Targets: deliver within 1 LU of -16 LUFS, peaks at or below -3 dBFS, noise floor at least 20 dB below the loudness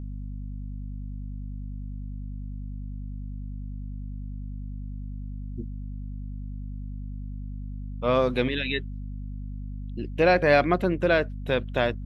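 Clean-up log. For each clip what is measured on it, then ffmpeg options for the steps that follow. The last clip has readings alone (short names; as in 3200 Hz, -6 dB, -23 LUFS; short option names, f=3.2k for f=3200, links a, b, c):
hum 50 Hz; harmonics up to 250 Hz; hum level -32 dBFS; loudness -29.5 LUFS; peak -6.5 dBFS; loudness target -16.0 LUFS
-> -af "bandreject=f=50:t=h:w=6,bandreject=f=100:t=h:w=6,bandreject=f=150:t=h:w=6,bandreject=f=200:t=h:w=6,bandreject=f=250:t=h:w=6"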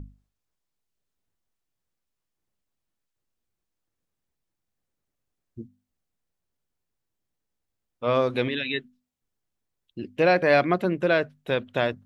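hum none; loudness -24.0 LUFS; peak -7.5 dBFS; loudness target -16.0 LUFS
-> -af "volume=8dB,alimiter=limit=-3dB:level=0:latency=1"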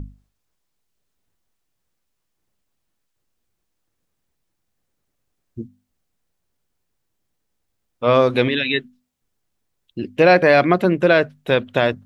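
loudness -16.5 LUFS; peak -3.0 dBFS; noise floor -75 dBFS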